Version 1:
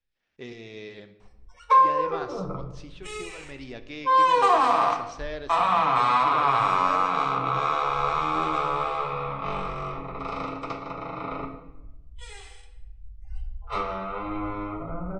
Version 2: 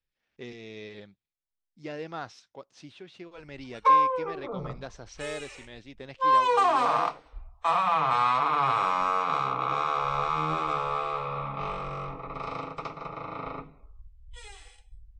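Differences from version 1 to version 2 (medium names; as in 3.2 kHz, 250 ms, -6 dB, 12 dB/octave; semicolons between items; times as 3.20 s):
background: entry +2.15 s; reverb: off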